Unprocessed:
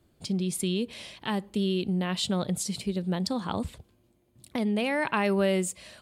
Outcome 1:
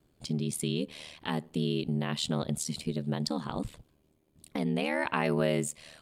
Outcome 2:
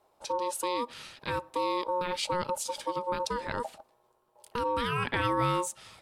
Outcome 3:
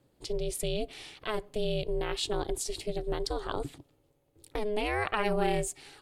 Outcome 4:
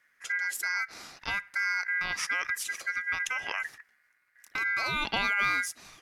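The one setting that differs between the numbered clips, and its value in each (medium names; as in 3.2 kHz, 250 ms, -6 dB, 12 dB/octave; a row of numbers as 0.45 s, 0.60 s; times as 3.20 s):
ring modulator, frequency: 38 Hz, 720 Hz, 210 Hz, 1.8 kHz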